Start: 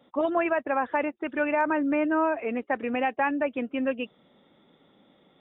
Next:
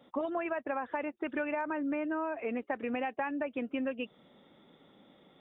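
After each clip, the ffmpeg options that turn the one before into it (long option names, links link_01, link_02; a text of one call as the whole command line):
ffmpeg -i in.wav -af "acompressor=threshold=-31dB:ratio=6" out.wav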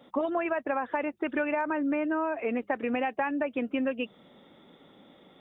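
ffmpeg -i in.wav -af "bandreject=frequency=50:width_type=h:width=6,bandreject=frequency=100:width_type=h:width=6,bandreject=frequency=150:width_type=h:width=6,bandreject=frequency=200:width_type=h:width=6,volume=5dB" out.wav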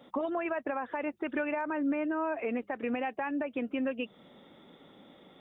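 ffmpeg -i in.wav -af "alimiter=limit=-23.5dB:level=0:latency=1:release=204" out.wav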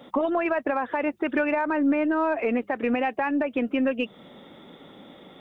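ffmpeg -i in.wav -af "aeval=exprs='0.0708*(cos(1*acos(clip(val(0)/0.0708,-1,1)))-cos(1*PI/2))+0.000708*(cos(4*acos(clip(val(0)/0.0708,-1,1)))-cos(4*PI/2))+0.000562*(cos(5*acos(clip(val(0)/0.0708,-1,1)))-cos(5*PI/2))':channel_layout=same,volume=8dB" out.wav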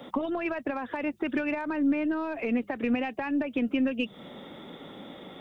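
ffmpeg -i in.wav -filter_complex "[0:a]acrossover=split=240|3000[link_01][link_02][link_03];[link_02]acompressor=threshold=-34dB:ratio=10[link_04];[link_01][link_04][link_03]amix=inputs=3:normalize=0,volume=3dB" out.wav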